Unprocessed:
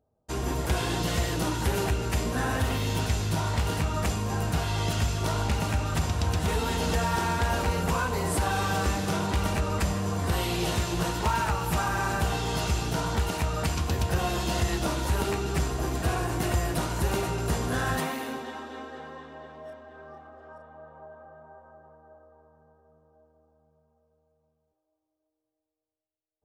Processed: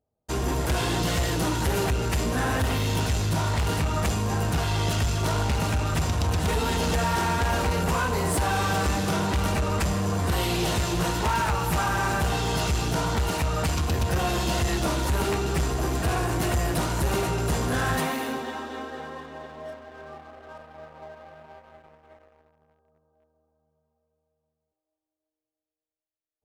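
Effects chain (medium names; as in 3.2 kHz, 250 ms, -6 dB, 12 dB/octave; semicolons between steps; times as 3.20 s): waveshaping leveller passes 2; trim -3 dB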